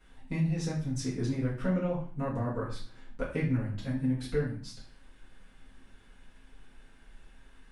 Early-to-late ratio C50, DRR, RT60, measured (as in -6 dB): 6.0 dB, -8.5 dB, 0.45 s